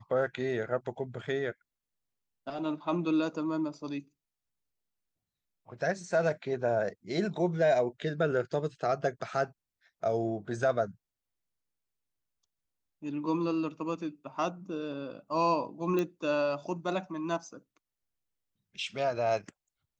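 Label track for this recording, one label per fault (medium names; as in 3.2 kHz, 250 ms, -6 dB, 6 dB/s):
15.990000	15.990000	pop -19 dBFS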